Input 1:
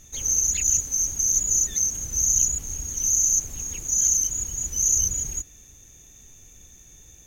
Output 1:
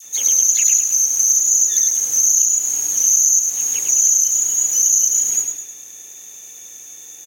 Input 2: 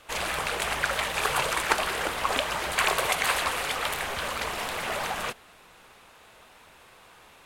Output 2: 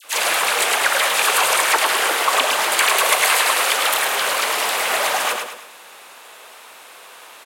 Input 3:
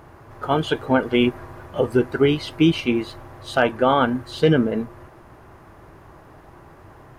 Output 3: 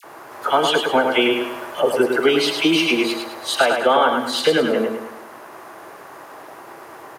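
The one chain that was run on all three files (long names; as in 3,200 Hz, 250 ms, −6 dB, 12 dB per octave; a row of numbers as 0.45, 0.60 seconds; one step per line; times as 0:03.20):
high-pass filter 420 Hz 12 dB per octave
high-shelf EQ 5,700 Hz +7 dB
downward compressor 3 to 1, threshold −23 dBFS
all-pass dispersion lows, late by 45 ms, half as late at 1,600 Hz
on a send: repeating echo 105 ms, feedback 41%, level −5 dB
on the sum: normalise the peak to −2 dBFS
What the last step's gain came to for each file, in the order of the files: +8.5, +9.5, +9.0 decibels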